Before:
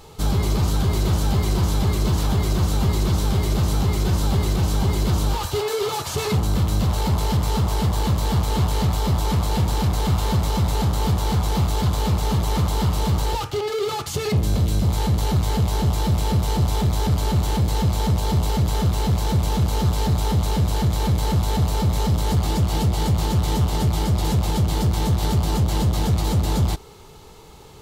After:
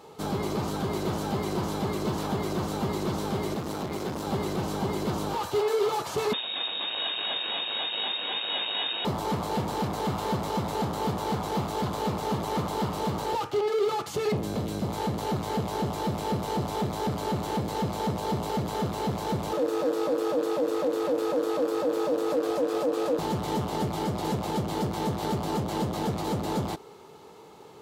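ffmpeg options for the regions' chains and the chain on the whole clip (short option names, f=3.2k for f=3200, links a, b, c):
-filter_complex "[0:a]asettb=1/sr,asplit=3[a][b][c];[a]atrim=end=3.544[d];[b]atrim=start=3.54:end=4.27,asetpts=PTS-STARTPTS,afade=t=in:d=0.004:c=qsin,afade=t=out:st=0.726:d=0.004:c=qsin,bandreject=f=50:t=h:w=6,bandreject=f=100:t=h:w=6,bandreject=f=150:t=h:w=6,bandreject=f=200:t=h:w=6,bandreject=f=250:t=h:w=6,bandreject=f=300:t=h:w=6,bandreject=f=350:t=h:w=6,bandreject=f=400:t=h:w=6,asoftclip=type=hard:threshold=-21.5dB[e];[c]atrim=start=4.266[f];[d][e]acrossfade=d=0.004:c1=hsin:c2=qsin[g];[g][f]acrossfade=d=0.004:c1=qsin:c2=hsin,asettb=1/sr,asplit=3[h][i][j];[h]atrim=end=6.334[k];[i]atrim=start=6.33:end=9.05,asetpts=PTS-STARTPTS,afade=t=in:d=0.004:c=qsin,afade=t=out:st=2.716:d=0.004:c=qsin,tiltshelf=f=840:g=-6.5,aecho=1:1:267:0.501,atrim=end_sample=119952,lowpass=f=3.2k:t=q:w=0.5098,lowpass=f=3.2k:t=q:w=0.6013,lowpass=f=3.2k:t=q:w=0.9,lowpass=f=3.2k:t=q:w=2.563,afreqshift=-3800[l];[j]atrim=start=9.046[m];[k][l]acrossfade=d=0.004:c1=hsin:c2=qsin[n];[n][m]acrossfade=d=0.004:c1=qsin:c2=hsin,asettb=1/sr,asplit=3[o][p][q];[o]atrim=end=19.534[r];[p]atrim=start=19.53:end=23.19,asetpts=PTS-STARTPTS,afade=t=in:d=0.004:c=qsin,afade=t=out:st=3.656:d=0.004:c=qsin,aeval=exprs='val(0)*sin(2*PI*390*n/s)':c=same,equalizer=f=220:w=1.7:g=-12.5[s];[q]atrim=start=23.186[t];[r][s]acrossfade=d=0.004:c1=hsin:c2=qsin[u];[u][t]acrossfade=d=0.004:c1=qsin:c2=hsin,highpass=240,highshelf=f=2.1k:g=-10.5"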